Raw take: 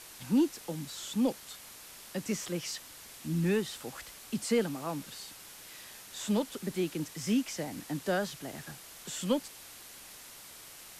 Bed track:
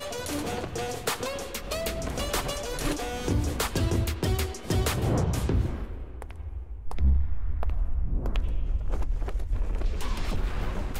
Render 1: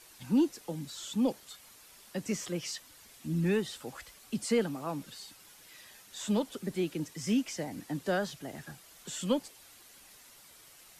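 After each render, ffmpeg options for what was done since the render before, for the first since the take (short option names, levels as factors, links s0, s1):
-af "afftdn=nr=8:nf=-50"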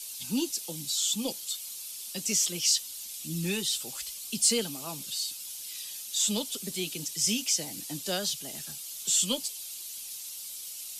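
-af "aexciter=amount=6.4:drive=6.6:freq=2600,flanger=delay=4.4:depth=1.6:regen=-54:speed=0.45:shape=sinusoidal"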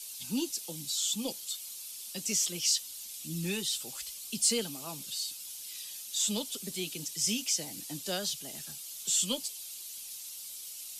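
-af "volume=0.708"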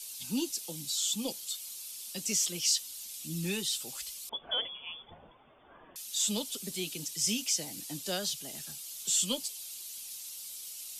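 -filter_complex "[0:a]asettb=1/sr,asplit=3[s0][s1][s2];[s0]atrim=end=4.294[s3];[s1]atrim=start=4.29:end=5.96,asetpts=PTS-STARTPTS,afade=t=in:d=0.004:c=qsin,afade=t=out:st=1.666:d=0.004:c=qsin,lowpass=f=3100:t=q:w=0.5098,lowpass=f=3100:t=q:w=0.6013,lowpass=f=3100:t=q:w=0.9,lowpass=f=3100:t=q:w=2.563,afreqshift=-3600[s4];[s2]atrim=start=5.956[s5];[s3][s4]acrossfade=d=0.004:c1=hsin:c2=qsin[s6];[s6][s5]acrossfade=d=0.004:c1=qsin:c2=hsin"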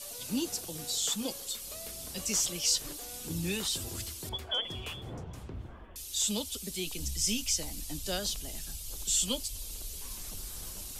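-filter_complex "[1:a]volume=0.141[s0];[0:a][s0]amix=inputs=2:normalize=0"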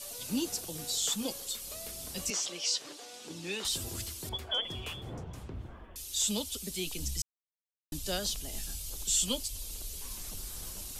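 -filter_complex "[0:a]asettb=1/sr,asplit=3[s0][s1][s2];[s0]atrim=end=2.304[s3];[s1]atrim=start=2.3:end=3.65,asetpts=PTS-STARTPTS,afade=t=in:d=0.004:c=qsin,afade=t=out:st=1.346:d=0.004:c=qsin,highpass=330,lowpass=5600[s4];[s2]atrim=start=3.646[s5];[s3][s4]acrossfade=d=0.004:c1=hsin:c2=qsin[s6];[s6][s5]acrossfade=d=0.004:c1=qsin:c2=hsin,asettb=1/sr,asplit=3[s7][s8][s9];[s7]atrim=end=8.504[s10];[s8]atrim=start=8.5:end=8.9,asetpts=PTS-STARTPTS,afade=t=in:d=0.004:c=qsin,afade=t=out:st=0.396:d=0.004:c=qsin,asplit=2[s11][s12];[s12]adelay=23,volume=0.596[s13];[s11][s13]amix=inputs=2:normalize=0,atrim=end_sample=17640[s14];[s9]atrim=start=8.896[s15];[s10][s14]acrossfade=d=0.004:c1=hsin:c2=qsin[s16];[s16][s15]acrossfade=d=0.004:c1=qsin:c2=hsin,asplit=3[s17][s18][s19];[s17]atrim=end=7.22,asetpts=PTS-STARTPTS,afade=t=out:st=7.216:d=0.004:c=hsin[s20];[s18]atrim=start=7.22:end=7.92,asetpts=PTS-STARTPTS,volume=0[s21];[s19]atrim=start=7.92,asetpts=PTS-STARTPTS,afade=t=in:d=0.004:c=hsin[s22];[s20][s21][s22]concat=n=3:v=0:a=1"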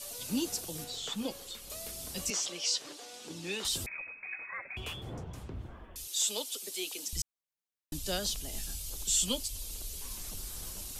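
-filter_complex "[0:a]asettb=1/sr,asplit=3[s0][s1][s2];[s0]atrim=end=0.844[s3];[s1]atrim=start=0.84:end=1.7,asetpts=PTS-STARTPTS,afade=t=in:d=0.004:c=qsin,afade=t=out:st=0.856:d=0.004:c=qsin,acrossover=split=3800[s4][s5];[s5]acompressor=threshold=0.00447:ratio=4:attack=1:release=60[s6];[s4][s6]amix=inputs=2:normalize=0[s7];[s2]atrim=start=1.696[s8];[s3][s7]acrossfade=d=0.004:c1=hsin:c2=qsin[s9];[s9][s8]acrossfade=d=0.004:c1=qsin:c2=hsin,asettb=1/sr,asplit=3[s10][s11][s12];[s10]atrim=end=3.864[s13];[s11]atrim=start=3.86:end=4.77,asetpts=PTS-STARTPTS,afade=t=in:d=0.004:c=qsin,afade=t=out:st=0.906:d=0.004:c=qsin,lowpass=f=2200:t=q:w=0.5098,lowpass=f=2200:t=q:w=0.6013,lowpass=f=2200:t=q:w=0.9,lowpass=f=2200:t=q:w=2.563,afreqshift=-2600[s14];[s12]atrim=start=4.766[s15];[s13][s14]acrossfade=d=0.004:c1=hsin:c2=qsin[s16];[s16][s15]acrossfade=d=0.004:c1=qsin:c2=hsin,asettb=1/sr,asplit=3[s17][s18][s19];[s17]atrim=end=6.074[s20];[s18]atrim=start=6.07:end=7.13,asetpts=PTS-STARTPTS,afade=t=in:d=0.004:c=qsin,afade=t=out:st=1.056:d=0.004:c=qsin,highpass=f=340:w=0.5412,highpass=f=340:w=1.3066[s21];[s19]atrim=start=7.126[s22];[s20][s21]acrossfade=d=0.004:c1=hsin:c2=qsin[s23];[s23][s22]acrossfade=d=0.004:c1=qsin:c2=hsin"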